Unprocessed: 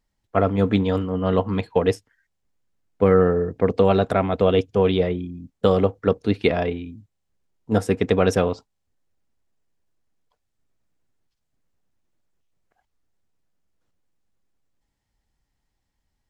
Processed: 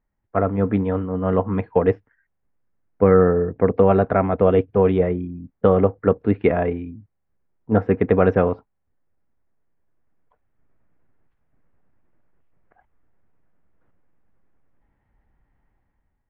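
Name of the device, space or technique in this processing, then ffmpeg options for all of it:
action camera in a waterproof case: -af "lowpass=f=2k:w=0.5412,lowpass=f=2k:w=1.3066,dynaudnorm=f=980:g=3:m=11.5dB,volume=-1dB" -ar 44100 -c:a aac -b:a 128k

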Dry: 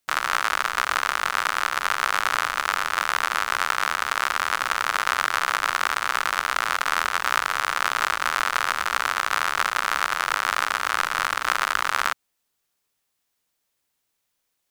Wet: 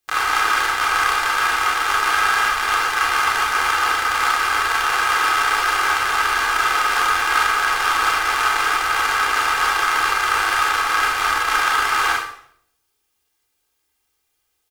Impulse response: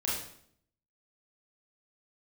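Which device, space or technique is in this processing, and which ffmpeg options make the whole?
microphone above a desk: -filter_complex "[0:a]aecho=1:1:2.5:0.62[a];[1:a]atrim=start_sample=2205[b];[a][b]afir=irnorm=-1:irlink=0,volume=-2dB"

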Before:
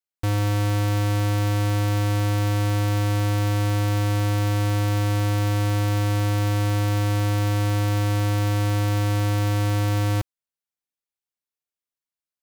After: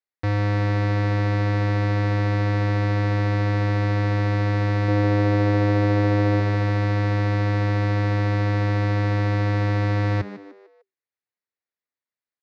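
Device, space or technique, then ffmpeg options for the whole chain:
frequency-shifting delay pedal into a guitar cabinet: -filter_complex "[0:a]asettb=1/sr,asplit=3[a][b][c];[a]atrim=end=4.884[d];[b]atrim=start=4.88:end=6.4,asetpts=PTS-STARTPTS,afade=t=in:d=0.004:c=qsin,afade=t=out:st=1.516:d=0.004:c=qsin,equalizer=f=380:w=0.99:g=8[e];[c]atrim=start=6.396[f];[d][e]acrossfade=d=0.004:c1=hsin:c2=qsin[g];[g][f]acrossfade=d=0.004:c1=qsin:c2=hsin,asplit=5[h][i][j][k][l];[i]adelay=150,afreqshift=96,volume=-14dB[m];[j]adelay=300,afreqshift=192,volume=-22dB[n];[k]adelay=450,afreqshift=288,volume=-29.9dB[o];[l]adelay=600,afreqshift=384,volume=-37.9dB[p];[h][m][n][o][p]amix=inputs=5:normalize=0,highpass=93,equalizer=f=94:t=q:w=4:g=4,equalizer=f=170:t=q:w=4:g=-5,equalizer=f=480:t=q:w=4:g=3,equalizer=f=1.9k:t=q:w=4:g=7,equalizer=f=3.1k:t=q:w=4:g=-9,lowpass=f=4.4k:w=0.5412,lowpass=f=4.4k:w=1.3066"

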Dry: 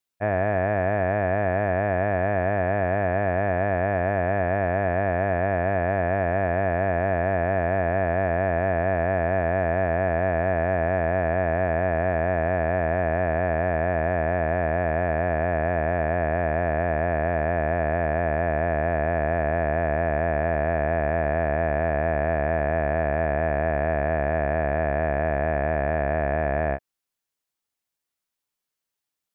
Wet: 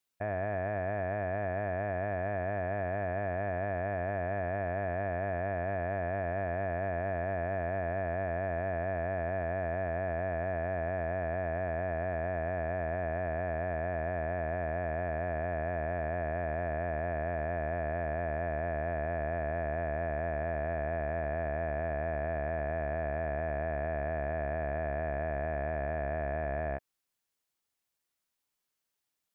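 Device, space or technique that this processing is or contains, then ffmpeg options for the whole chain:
stacked limiters: -af "alimiter=limit=-18.5dB:level=0:latency=1:release=12,alimiter=limit=-24dB:level=0:latency=1:release=48"

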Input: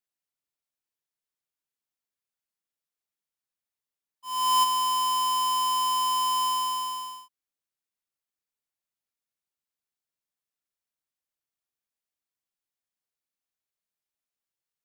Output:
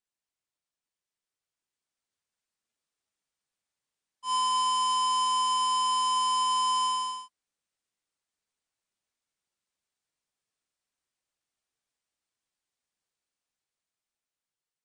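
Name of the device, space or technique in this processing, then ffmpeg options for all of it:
low-bitrate web radio: -af "dynaudnorm=f=710:g=5:m=5dB,alimiter=level_in=1.5dB:limit=-24dB:level=0:latency=1,volume=-1.5dB" -ar 22050 -c:a libmp3lame -b:a 40k

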